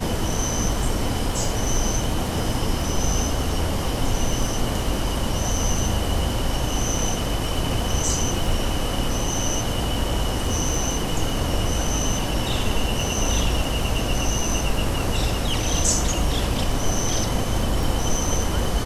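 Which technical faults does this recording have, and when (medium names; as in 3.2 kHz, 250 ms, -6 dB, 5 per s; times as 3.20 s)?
crackle 13 per s -26 dBFS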